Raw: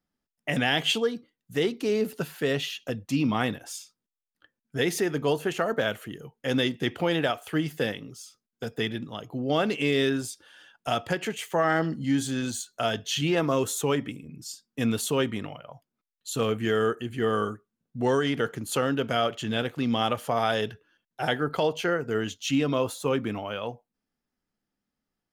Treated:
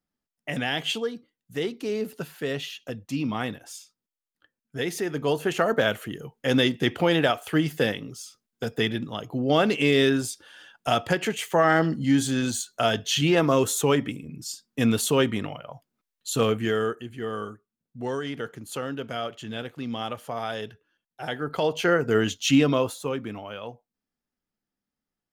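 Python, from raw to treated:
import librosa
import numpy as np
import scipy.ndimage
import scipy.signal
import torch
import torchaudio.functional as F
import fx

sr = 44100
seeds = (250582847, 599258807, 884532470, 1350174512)

y = fx.gain(x, sr, db=fx.line((4.97, -3.0), (5.62, 4.0), (16.43, 4.0), (17.18, -6.0), (21.24, -6.0), (21.98, 6.0), (22.59, 6.0), (23.15, -4.0)))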